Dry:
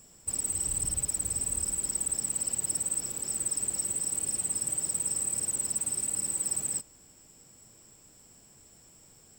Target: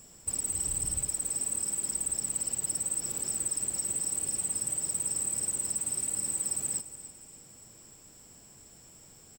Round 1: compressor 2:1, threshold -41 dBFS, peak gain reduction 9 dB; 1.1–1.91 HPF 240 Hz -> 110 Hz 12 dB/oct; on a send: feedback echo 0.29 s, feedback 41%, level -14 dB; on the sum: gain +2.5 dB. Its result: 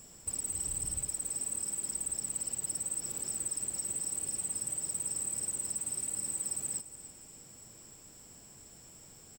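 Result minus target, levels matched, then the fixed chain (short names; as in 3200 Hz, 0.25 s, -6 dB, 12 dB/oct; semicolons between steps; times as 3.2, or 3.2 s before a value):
compressor: peak gain reduction +4 dB
compressor 2:1, threshold -33 dBFS, peak gain reduction 5 dB; 1.1–1.91 HPF 240 Hz -> 110 Hz 12 dB/oct; on a send: feedback echo 0.29 s, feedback 41%, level -14 dB; on the sum: gain +2.5 dB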